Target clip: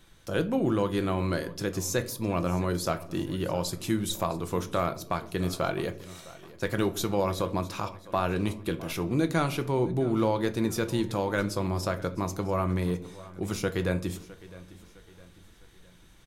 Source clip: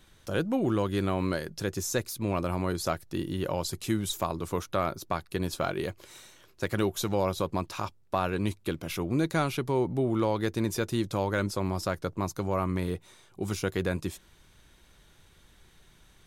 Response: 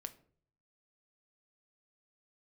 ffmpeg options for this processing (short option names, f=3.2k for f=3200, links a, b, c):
-filter_complex "[0:a]aecho=1:1:659|1318|1977|2636:0.112|0.0505|0.0227|0.0102[a];[1:a]atrim=start_sample=2205[b];[a][b]afir=irnorm=-1:irlink=0,volume=4.5dB"